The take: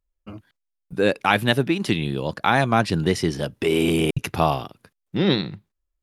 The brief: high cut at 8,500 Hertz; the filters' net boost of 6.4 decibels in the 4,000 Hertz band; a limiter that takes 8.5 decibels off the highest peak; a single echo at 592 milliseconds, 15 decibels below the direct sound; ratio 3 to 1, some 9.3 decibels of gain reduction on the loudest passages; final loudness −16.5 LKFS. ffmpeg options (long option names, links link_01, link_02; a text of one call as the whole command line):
ffmpeg -i in.wav -af "lowpass=8500,equalizer=frequency=4000:width_type=o:gain=8,acompressor=threshold=-25dB:ratio=3,alimiter=limit=-16dB:level=0:latency=1,aecho=1:1:592:0.178,volume=13dB" out.wav